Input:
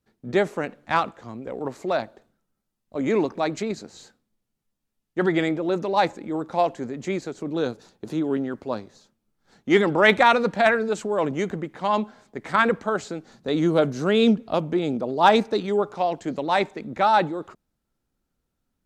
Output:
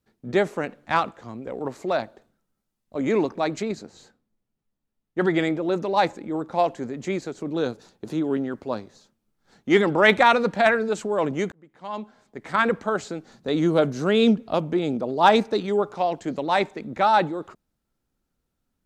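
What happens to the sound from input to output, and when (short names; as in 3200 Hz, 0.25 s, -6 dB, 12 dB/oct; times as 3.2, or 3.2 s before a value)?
3.13–6.68 mismatched tape noise reduction decoder only
11.52–12.82 fade in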